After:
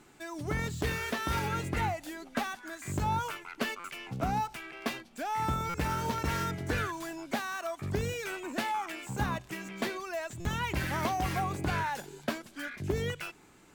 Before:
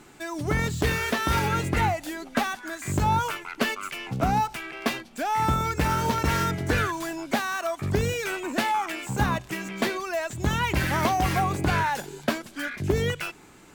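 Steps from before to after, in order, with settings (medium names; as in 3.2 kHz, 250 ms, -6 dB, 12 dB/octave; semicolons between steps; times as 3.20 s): buffer glitch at 3.79/5.69/10.40 s, samples 256, times 8; trim -7.5 dB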